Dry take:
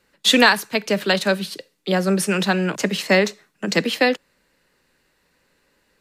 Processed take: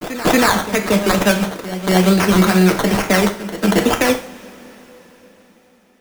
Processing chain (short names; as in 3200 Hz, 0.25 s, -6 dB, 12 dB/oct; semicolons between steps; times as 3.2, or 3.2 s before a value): low shelf 190 Hz +4 dB; in parallel at 0 dB: level quantiser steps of 15 dB; on the sum: limiter -9 dBFS, peak gain reduction 11 dB; decimation with a swept rate 14×, swing 60% 2.2 Hz; crossover distortion -36 dBFS; pre-echo 0.233 s -13 dB; on a send at -5 dB: reverb, pre-delay 3 ms; on the sum: gain +4.5 dB